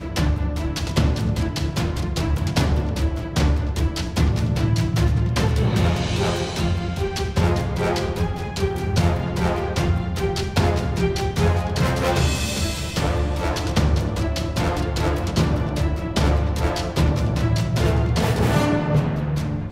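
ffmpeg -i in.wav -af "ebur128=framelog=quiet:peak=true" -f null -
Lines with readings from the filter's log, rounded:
Integrated loudness:
  I:         -22.0 LUFS
  Threshold: -32.0 LUFS
Loudness range:
  LRA:         1.8 LU
  Threshold: -42.0 LUFS
  LRA low:   -22.8 LUFS
  LRA high:  -21.0 LUFS
True peak:
  Peak:       -5.4 dBFS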